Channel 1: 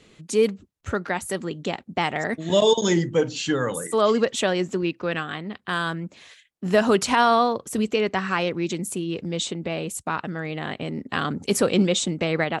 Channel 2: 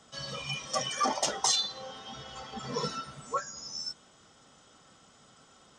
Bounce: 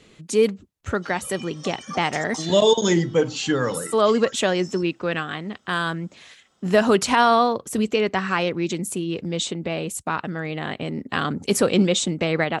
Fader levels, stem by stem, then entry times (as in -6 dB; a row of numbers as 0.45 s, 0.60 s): +1.5 dB, -7.0 dB; 0.00 s, 0.90 s